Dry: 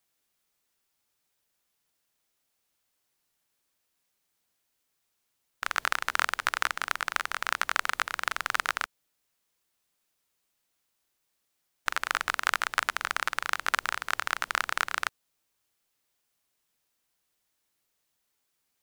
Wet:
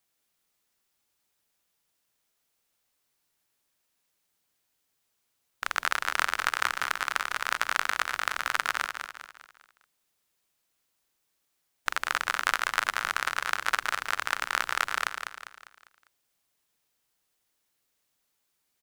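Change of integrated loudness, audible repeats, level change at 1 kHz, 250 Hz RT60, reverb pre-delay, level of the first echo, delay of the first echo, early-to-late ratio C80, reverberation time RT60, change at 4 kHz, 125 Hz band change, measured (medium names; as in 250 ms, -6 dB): +1.0 dB, 4, +1.0 dB, no reverb, no reverb, -7.0 dB, 200 ms, no reverb, no reverb, +1.0 dB, no reading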